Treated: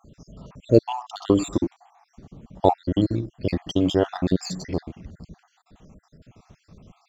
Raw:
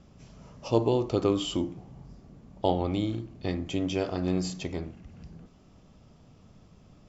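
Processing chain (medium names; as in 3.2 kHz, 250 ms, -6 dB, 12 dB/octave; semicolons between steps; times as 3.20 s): random holes in the spectrogram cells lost 57%; in parallel at -10 dB: crossover distortion -43 dBFS; on the sum: trim +7 dB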